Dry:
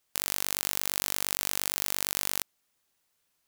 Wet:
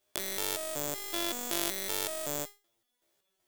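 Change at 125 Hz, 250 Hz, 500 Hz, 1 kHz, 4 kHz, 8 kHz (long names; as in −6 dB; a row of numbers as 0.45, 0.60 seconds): −1.0, +5.5, +7.0, −1.0, −3.0, −4.5 decibels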